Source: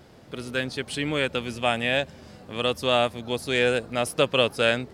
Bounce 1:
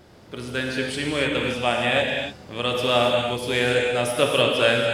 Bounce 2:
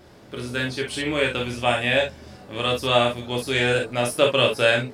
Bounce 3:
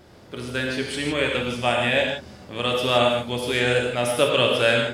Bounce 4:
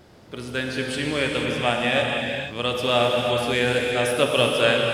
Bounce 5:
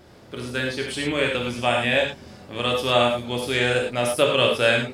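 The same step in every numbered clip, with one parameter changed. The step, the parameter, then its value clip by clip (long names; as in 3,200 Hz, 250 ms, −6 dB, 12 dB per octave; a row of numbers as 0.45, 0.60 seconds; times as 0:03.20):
reverb whose tail is shaped and stops, gate: 320, 80, 190, 520, 130 milliseconds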